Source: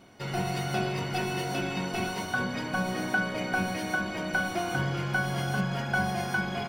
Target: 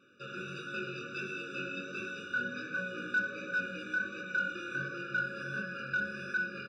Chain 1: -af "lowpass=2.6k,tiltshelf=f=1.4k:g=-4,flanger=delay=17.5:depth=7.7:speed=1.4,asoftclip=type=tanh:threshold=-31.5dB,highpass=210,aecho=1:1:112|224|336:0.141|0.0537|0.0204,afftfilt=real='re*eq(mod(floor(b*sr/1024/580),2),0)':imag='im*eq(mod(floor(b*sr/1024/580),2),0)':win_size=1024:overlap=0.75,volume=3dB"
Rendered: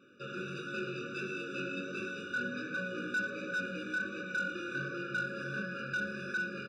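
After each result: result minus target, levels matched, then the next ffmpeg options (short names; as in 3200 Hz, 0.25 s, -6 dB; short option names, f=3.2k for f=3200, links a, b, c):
soft clip: distortion +8 dB; 250 Hz band +4.0 dB
-af "lowpass=2.6k,tiltshelf=f=1.4k:g=-4,flanger=delay=17.5:depth=7.7:speed=1.4,asoftclip=type=tanh:threshold=-24.5dB,highpass=210,aecho=1:1:112|224|336:0.141|0.0537|0.0204,afftfilt=real='re*eq(mod(floor(b*sr/1024/580),2),0)':imag='im*eq(mod(floor(b*sr/1024/580),2),0)':win_size=1024:overlap=0.75,volume=3dB"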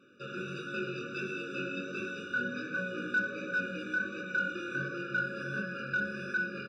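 250 Hz band +3.5 dB
-af "lowpass=2.6k,tiltshelf=f=1.4k:g=-4,flanger=delay=17.5:depth=7.7:speed=1.4,asoftclip=type=tanh:threshold=-24.5dB,highpass=210,equalizer=f=290:t=o:w=2.5:g=-5,aecho=1:1:112|224|336:0.141|0.0537|0.0204,afftfilt=real='re*eq(mod(floor(b*sr/1024/580),2),0)':imag='im*eq(mod(floor(b*sr/1024/580),2),0)':win_size=1024:overlap=0.75,volume=3dB"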